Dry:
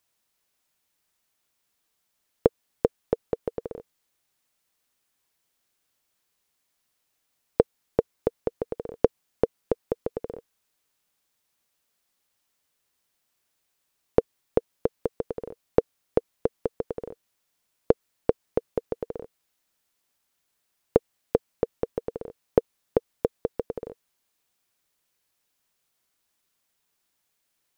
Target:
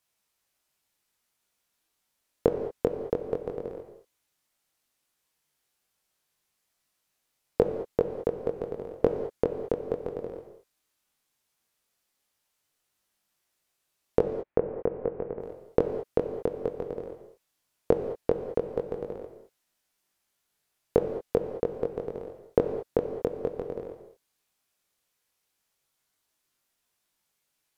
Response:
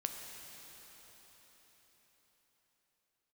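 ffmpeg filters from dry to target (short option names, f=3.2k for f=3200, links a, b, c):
-filter_complex "[0:a]asettb=1/sr,asplit=3[a][b][c];[a]atrim=end=14.194[d];[b]atrim=start=14.19:end=15.4,asetpts=PTS-STARTPTS,afade=t=in:d=0.004:c=qsin,afade=t=out:st=1.206:d=0.004:c=qsin,lowpass=f=2.3k:w=0.5412,lowpass=f=2.3k:w=1.3066[e];[c]atrim=start=15.396[f];[d][e]acrossfade=d=0.004:c1=hsin:c2=qsin[g];[g][f]acrossfade=d=0.004:c1=qsin:c2=hsin,flanger=delay=20:depth=2.3:speed=0.15[h];[1:a]atrim=start_sample=2205,afade=t=out:st=0.19:d=0.01,atrim=end_sample=8820,asetrate=28224,aresample=44100[i];[h][i]afir=irnorm=-1:irlink=0"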